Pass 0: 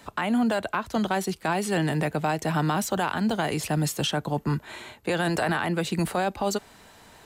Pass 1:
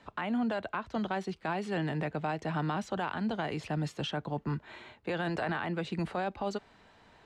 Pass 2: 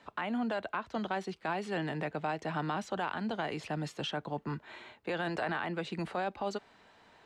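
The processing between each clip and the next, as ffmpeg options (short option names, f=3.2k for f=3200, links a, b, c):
-af "lowpass=3.7k,volume=-7.5dB"
-af "lowshelf=f=150:g=-10.5"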